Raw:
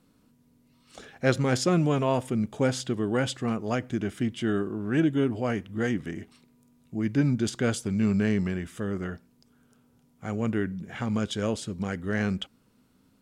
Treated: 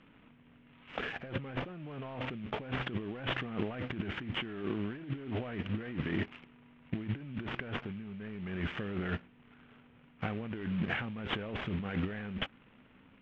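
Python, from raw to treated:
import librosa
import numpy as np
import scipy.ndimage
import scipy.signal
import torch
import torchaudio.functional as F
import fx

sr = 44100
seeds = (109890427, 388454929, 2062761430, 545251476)

y = fx.cvsd(x, sr, bps=16000)
y = fx.high_shelf(y, sr, hz=2100.0, db=12.0)
y = fx.leveller(y, sr, passes=1)
y = fx.over_compress(y, sr, threshold_db=-34.0, ratio=-1.0)
y = fx.air_absorb(y, sr, metres=150.0)
y = y * librosa.db_to_amplitude(-4.0)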